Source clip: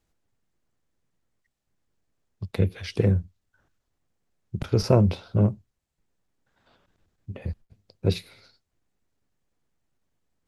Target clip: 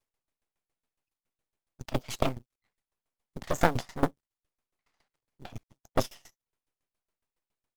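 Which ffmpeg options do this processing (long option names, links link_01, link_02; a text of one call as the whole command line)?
ffmpeg -i in.wav -af "agate=range=-9dB:threshold=-56dB:ratio=16:detection=peak,firequalizer=gain_entry='entry(120,0);entry(310,6);entry(660,10)':delay=0.05:min_phase=1,aeval=exprs='max(val(0),0)':channel_layout=same,acrusher=bits=6:mode=log:mix=0:aa=0.000001,asetrate=59535,aresample=44100,aeval=exprs='val(0)*pow(10,-20*if(lt(mod(7.2*n/s,1),2*abs(7.2)/1000),1-mod(7.2*n/s,1)/(2*abs(7.2)/1000),(mod(7.2*n/s,1)-2*abs(7.2)/1000)/(1-2*abs(7.2)/1000))/20)':channel_layout=same" out.wav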